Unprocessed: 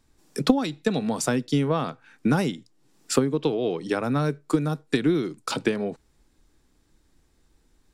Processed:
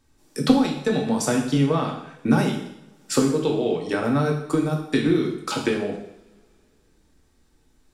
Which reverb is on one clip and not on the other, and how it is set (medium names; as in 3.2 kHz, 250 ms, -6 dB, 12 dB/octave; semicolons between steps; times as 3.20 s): two-slope reverb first 0.73 s, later 3 s, from -28 dB, DRR -0.5 dB; trim -1 dB